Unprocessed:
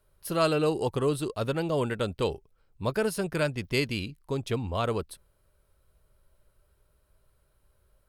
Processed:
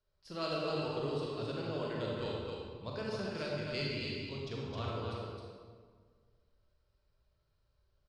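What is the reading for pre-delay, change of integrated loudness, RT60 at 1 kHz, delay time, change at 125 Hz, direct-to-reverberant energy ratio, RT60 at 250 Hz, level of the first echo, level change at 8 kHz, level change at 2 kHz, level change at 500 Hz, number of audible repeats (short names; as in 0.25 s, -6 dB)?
31 ms, -9.5 dB, 1.6 s, 0.264 s, -8.5 dB, -4.5 dB, 2.0 s, -5.0 dB, -18.5 dB, -9.0 dB, -9.5 dB, 1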